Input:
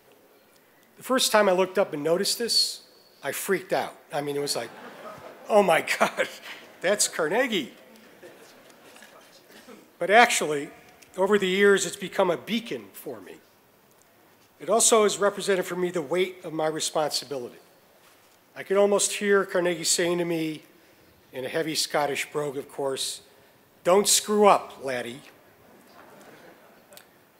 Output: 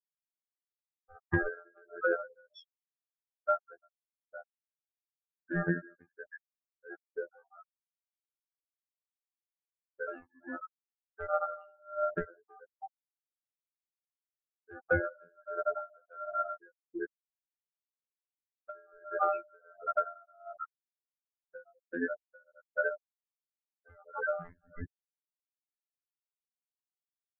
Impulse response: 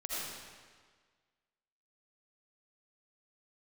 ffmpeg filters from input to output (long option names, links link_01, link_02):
-filter_complex "[0:a]aecho=1:1:73|181|304|318:0.299|0.355|0.119|0.447,asplit=2[link_01][link_02];[link_02]acrusher=samples=36:mix=1:aa=0.000001:lfo=1:lforange=57.6:lforate=0.3,volume=-6.5dB[link_03];[link_01][link_03]amix=inputs=2:normalize=0,aeval=exprs='val(0)*sin(2*PI*1000*n/s)':channel_layout=same,highshelf=frequency=5000:gain=-9.5,asplit=2[link_04][link_05];[1:a]atrim=start_sample=2205,afade=type=out:start_time=0.25:duration=0.01,atrim=end_sample=11466,lowshelf=frequency=90:gain=-10.5[link_06];[link_05][link_06]afir=irnorm=-1:irlink=0,volume=-11dB[link_07];[link_04][link_07]amix=inputs=2:normalize=0,afftfilt=real='re*gte(hypot(re,im),0.355)':imag='im*gte(hypot(re,im),0.355)':win_size=1024:overlap=0.75,dynaudnorm=framelen=680:gausssize=11:maxgain=7dB,bass=frequency=250:gain=13,treble=frequency=4000:gain=-1,afftfilt=real='hypot(re,im)*cos(PI*b)':imag='0':win_size=2048:overlap=0.75,acompressor=threshold=-33dB:ratio=8,aeval=exprs='val(0)*pow(10,-34*(0.5-0.5*cos(2*PI*1.4*n/s))/20)':channel_layout=same,volume=8dB"